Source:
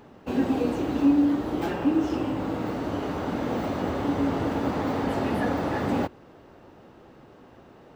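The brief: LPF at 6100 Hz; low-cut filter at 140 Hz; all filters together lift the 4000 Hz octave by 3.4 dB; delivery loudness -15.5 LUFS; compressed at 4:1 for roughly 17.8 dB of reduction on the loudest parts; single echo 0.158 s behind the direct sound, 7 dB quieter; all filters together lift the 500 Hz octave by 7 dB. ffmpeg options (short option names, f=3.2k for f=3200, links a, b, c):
-af "highpass=140,lowpass=6.1k,equalizer=f=500:t=o:g=8.5,equalizer=f=4k:t=o:g=5,acompressor=threshold=-37dB:ratio=4,aecho=1:1:158:0.447,volume=22dB"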